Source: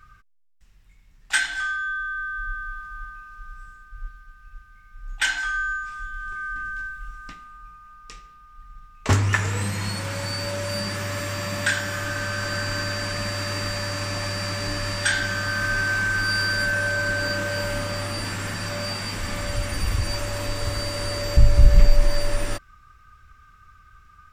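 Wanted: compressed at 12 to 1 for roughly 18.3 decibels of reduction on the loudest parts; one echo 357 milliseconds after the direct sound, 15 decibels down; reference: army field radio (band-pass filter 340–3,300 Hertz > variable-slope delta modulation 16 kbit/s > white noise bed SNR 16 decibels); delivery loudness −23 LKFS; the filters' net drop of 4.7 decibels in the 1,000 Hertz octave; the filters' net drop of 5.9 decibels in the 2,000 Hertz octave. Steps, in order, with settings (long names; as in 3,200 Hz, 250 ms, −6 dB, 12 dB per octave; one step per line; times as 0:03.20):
parametric band 1,000 Hz −3.5 dB
parametric band 2,000 Hz −6.5 dB
downward compressor 12 to 1, threshold −26 dBFS
band-pass filter 340–3,300 Hz
single-tap delay 357 ms −15 dB
variable-slope delta modulation 16 kbit/s
white noise bed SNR 16 dB
level +13 dB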